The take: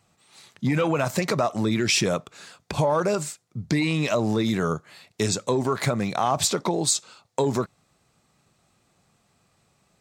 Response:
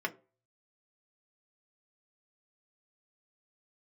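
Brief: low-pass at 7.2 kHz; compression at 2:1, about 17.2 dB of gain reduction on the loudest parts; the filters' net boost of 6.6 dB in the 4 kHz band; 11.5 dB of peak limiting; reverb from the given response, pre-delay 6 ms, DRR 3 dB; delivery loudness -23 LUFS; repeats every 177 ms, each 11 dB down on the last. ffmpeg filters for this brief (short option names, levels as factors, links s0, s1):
-filter_complex "[0:a]lowpass=7200,equalizer=f=4000:t=o:g=8.5,acompressor=threshold=0.00398:ratio=2,alimiter=level_in=1.88:limit=0.0631:level=0:latency=1,volume=0.531,aecho=1:1:177|354|531:0.282|0.0789|0.0221,asplit=2[s0][s1];[1:a]atrim=start_sample=2205,adelay=6[s2];[s1][s2]afir=irnorm=-1:irlink=0,volume=0.376[s3];[s0][s3]amix=inputs=2:normalize=0,volume=7.08"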